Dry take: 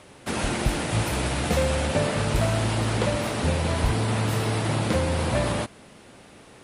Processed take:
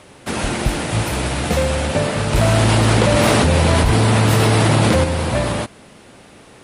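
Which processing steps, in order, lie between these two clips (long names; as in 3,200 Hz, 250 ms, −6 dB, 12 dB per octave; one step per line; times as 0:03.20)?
0:02.33–0:05.04: envelope flattener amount 100%
level +5 dB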